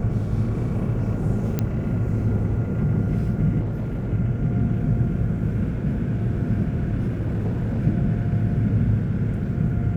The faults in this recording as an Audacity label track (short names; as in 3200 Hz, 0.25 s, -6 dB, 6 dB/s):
1.590000	1.590000	pop -10 dBFS
3.600000	4.120000	clipped -23 dBFS
7.070000	7.780000	clipped -20.5 dBFS